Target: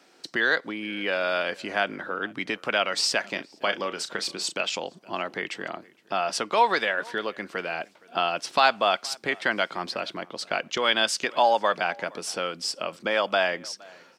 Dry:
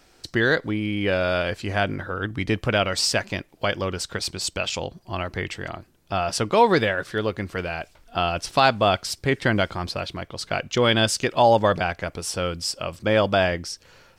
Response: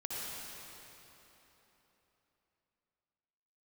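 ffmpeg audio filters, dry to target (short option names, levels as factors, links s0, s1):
-filter_complex "[0:a]highpass=f=200:w=0.5412,highpass=f=200:w=1.3066,highshelf=f=9400:g=-10.5,acrossover=split=650|3000[s0][s1][s2];[s0]acompressor=threshold=0.0224:ratio=6[s3];[s3][s1][s2]amix=inputs=3:normalize=0,asplit=3[s4][s5][s6];[s4]afade=t=out:st=3.23:d=0.02[s7];[s5]asplit=2[s8][s9];[s9]adelay=35,volume=0.316[s10];[s8][s10]amix=inputs=2:normalize=0,afade=t=in:st=3.23:d=0.02,afade=t=out:st=4.61:d=0.02[s11];[s6]afade=t=in:st=4.61:d=0.02[s12];[s7][s11][s12]amix=inputs=3:normalize=0,asplit=2[s13][s14];[s14]adelay=466.5,volume=0.0631,highshelf=f=4000:g=-10.5[s15];[s13][s15]amix=inputs=2:normalize=0"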